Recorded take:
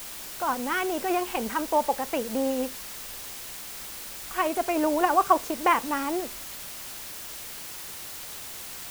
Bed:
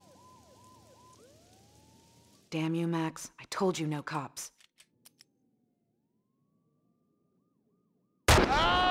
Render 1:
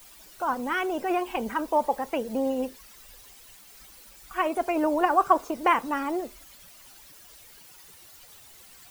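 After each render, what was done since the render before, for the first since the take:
broadband denoise 14 dB, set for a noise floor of −39 dBFS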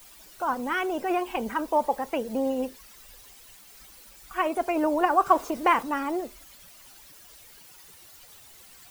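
0:05.26–0:05.83: mu-law and A-law mismatch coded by mu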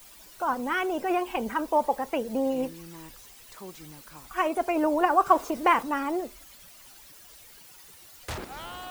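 mix in bed −14 dB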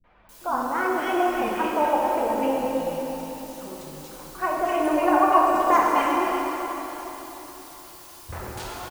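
three-band delay without the direct sound lows, mids, highs 40/290 ms, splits 250/2,100 Hz
dense smooth reverb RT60 4 s, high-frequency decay 0.8×, DRR −3.5 dB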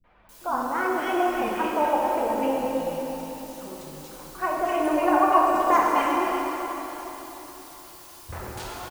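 level −1 dB

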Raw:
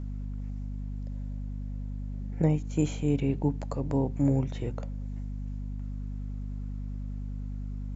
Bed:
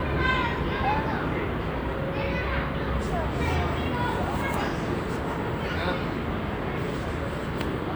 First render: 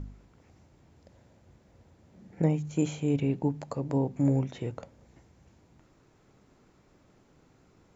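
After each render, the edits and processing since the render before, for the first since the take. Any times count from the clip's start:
hum removal 50 Hz, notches 5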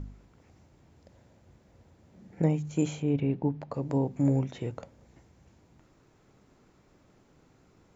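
0:03.02–0:03.74: high-frequency loss of the air 200 metres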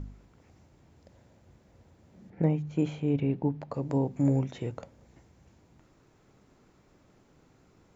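0:02.30–0:03.03: high-frequency loss of the air 180 metres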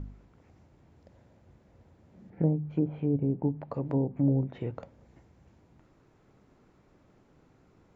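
treble cut that deepens with the level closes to 610 Hz, closed at −23 dBFS
high-shelf EQ 4,000 Hz −10 dB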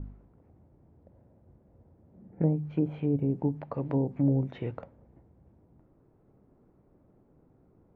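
low-pass that shuts in the quiet parts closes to 620 Hz, open at −23.5 dBFS
high-shelf EQ 2,500 Hz +11.5 dB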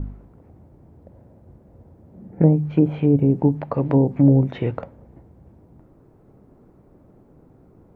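level +11 dB

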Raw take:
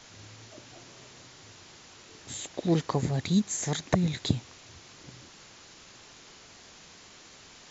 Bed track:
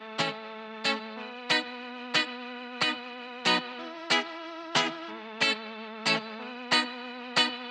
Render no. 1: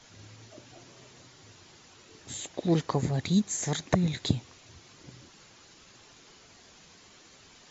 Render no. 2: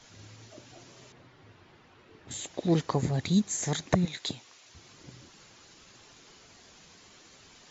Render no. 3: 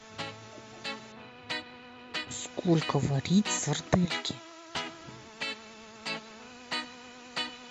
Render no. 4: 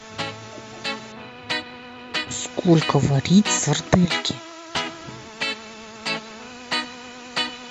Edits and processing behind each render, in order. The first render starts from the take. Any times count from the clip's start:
broadband denoise 6 dB, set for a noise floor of −52 dBFS
0:01.12–0:02.31: low-pass filter 2,400 Hz; 0:04.05–0:04.75: high-pass filter 830 Hz 6 dB per octave
mix in bed track −9.5 dB
level +9.5 dB; brickwall limiter −2 dBFS, peak gain reduction 1.5 dB

